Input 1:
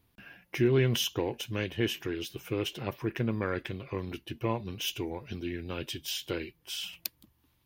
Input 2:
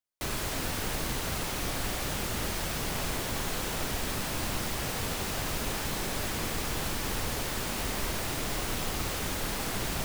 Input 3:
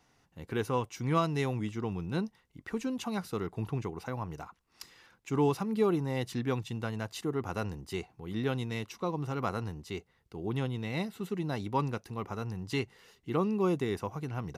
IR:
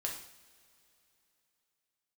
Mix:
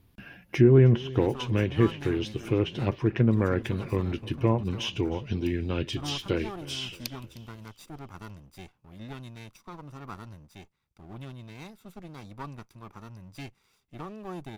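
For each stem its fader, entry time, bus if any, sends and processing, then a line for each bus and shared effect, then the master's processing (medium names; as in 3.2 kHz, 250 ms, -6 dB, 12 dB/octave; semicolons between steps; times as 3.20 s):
+2.5 dB, 0.00 s, no send, echo send -20 dB, low-pass that closes with the level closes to 1.4 kHz, closed at -25 dBFS; bass shelf 360 Hz +8 dB
mute
-8.5 dB, 0.65 s, no send, no echo send, comb filter that takes the minimum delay 0.84 ms; treble shelf 11 kHz +4.5 dB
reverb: none
echo: feedback delay 310 ms, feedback 48%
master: none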